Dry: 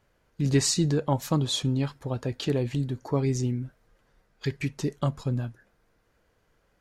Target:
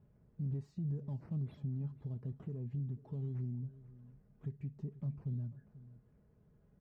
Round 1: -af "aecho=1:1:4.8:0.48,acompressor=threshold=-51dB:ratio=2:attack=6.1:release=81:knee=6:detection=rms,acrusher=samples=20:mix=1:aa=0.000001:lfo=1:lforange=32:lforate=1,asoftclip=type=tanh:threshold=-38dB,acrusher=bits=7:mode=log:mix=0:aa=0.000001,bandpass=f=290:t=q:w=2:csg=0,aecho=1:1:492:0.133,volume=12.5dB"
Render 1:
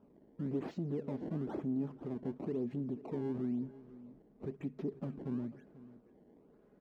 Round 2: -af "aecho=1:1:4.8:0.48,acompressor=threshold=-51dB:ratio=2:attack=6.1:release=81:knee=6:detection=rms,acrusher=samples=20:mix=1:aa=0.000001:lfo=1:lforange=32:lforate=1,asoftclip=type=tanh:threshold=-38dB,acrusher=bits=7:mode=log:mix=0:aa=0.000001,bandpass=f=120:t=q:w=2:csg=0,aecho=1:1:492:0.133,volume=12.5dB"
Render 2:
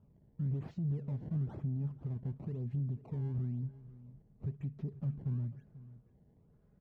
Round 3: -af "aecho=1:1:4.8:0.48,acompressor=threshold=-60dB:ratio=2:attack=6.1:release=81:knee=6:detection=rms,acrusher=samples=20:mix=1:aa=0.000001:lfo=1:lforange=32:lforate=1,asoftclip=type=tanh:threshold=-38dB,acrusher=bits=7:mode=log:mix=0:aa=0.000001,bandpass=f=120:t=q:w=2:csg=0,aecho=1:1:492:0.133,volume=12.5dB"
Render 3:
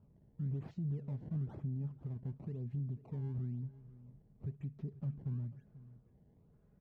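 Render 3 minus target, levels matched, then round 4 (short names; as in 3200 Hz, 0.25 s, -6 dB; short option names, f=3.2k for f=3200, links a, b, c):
decimation with a swept rate: distortion +6 dB
-af "aecho=1:1:4.8:0.48,acompressor=threshold=-60dB:ratio=2:attack=6.1:release=81:knee=6:detection=rms,acrusher=samples=7:mix=1:aa=0.000001:lfo=1:lforange=11.2:lforate=1,asoftclip=type=tanh:threshold=-38dB,acrusher=bits=7:mode=log:mix=0:aa=0.000001,bandpass=f=120:t=q:w=2:csg=0,aecho=1:1:492:0.133,volume=12.5dB"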